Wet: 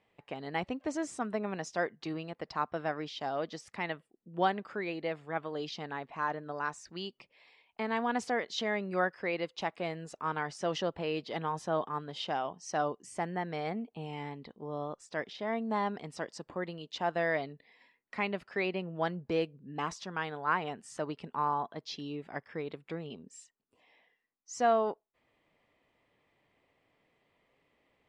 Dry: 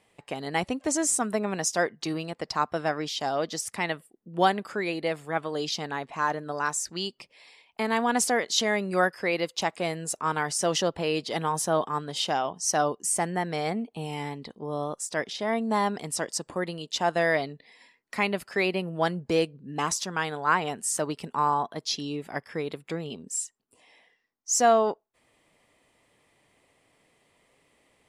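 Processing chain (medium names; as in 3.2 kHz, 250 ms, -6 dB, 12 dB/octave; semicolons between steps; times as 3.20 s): low-pass 3.4 kHz 12 dB/octave; trim -6.5 dB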